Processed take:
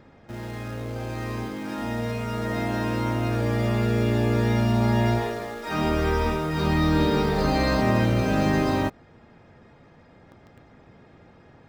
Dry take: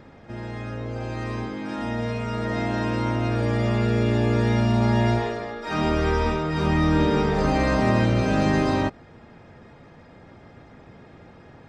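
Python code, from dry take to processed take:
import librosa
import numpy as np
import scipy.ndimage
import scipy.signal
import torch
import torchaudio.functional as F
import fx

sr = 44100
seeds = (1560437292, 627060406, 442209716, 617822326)

p1 = fx.peak_eq(x, sr, hz=4200.0, db=9.5, octaves=0.28, at=(6.59, 7.81))
p2 = fx.quant_dither(p1, sr, seeds[0], bits=6, dither='none')
p3 = p1 + (p2 * librosa.db_to_amplitude(-6.5))
y = p3 * librosa.db_to_amplitude(-4.5)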